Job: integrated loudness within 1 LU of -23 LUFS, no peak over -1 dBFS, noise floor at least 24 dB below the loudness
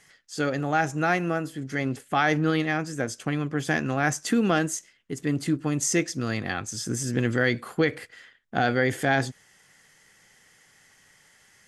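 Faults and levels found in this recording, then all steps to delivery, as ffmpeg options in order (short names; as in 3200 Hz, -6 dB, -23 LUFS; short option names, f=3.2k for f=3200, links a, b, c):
loudness -26.0 LUFS; peak -9.0 dBFS; loudness target -23.0 LUFS
-> -af "volume=3dB"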